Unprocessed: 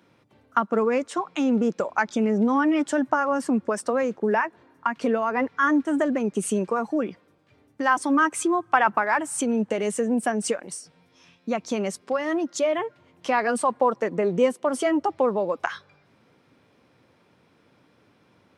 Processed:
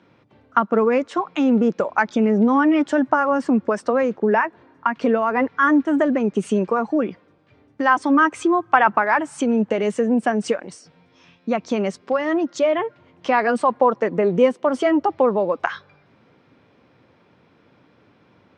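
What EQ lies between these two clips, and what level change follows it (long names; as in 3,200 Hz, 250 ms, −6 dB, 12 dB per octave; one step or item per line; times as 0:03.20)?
high-frequency loss of the air 130 metres
+5.0 dB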